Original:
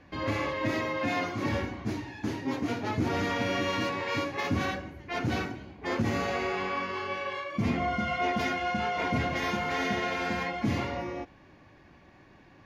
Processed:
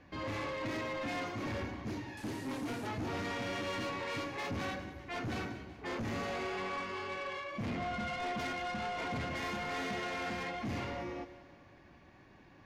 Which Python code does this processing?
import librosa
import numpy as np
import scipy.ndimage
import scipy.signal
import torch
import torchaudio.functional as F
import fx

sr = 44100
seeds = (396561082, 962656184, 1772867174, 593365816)

y = fx.delta_mod(x, sr, bps=64000, step_db=-40.0, at=(2.17, 2.87))
y = 10.0 ** (-30.5 / 20.0) * np.tanh(y / 10.0 ** (-30.5 / 20.0))
y = fx.echo_split(y, sr, split_hz=490.0, low_ms=103, high_ms=190, feedback_pct=52, wet_db=-15)
y = y * 10.0 ** (-3.5 / 20.0)